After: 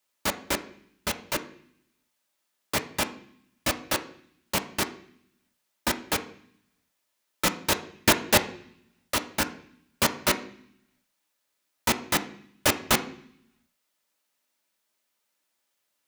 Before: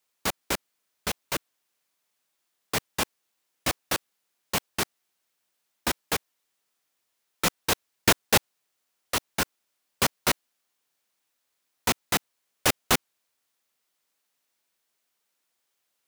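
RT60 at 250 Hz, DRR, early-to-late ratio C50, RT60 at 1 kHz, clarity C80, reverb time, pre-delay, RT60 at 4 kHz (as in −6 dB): 1.0 s, 6.0 dB, 14.0 dB, 0.60 s, 17.5 dB, 0.60 s, 3 ms, 0.80 s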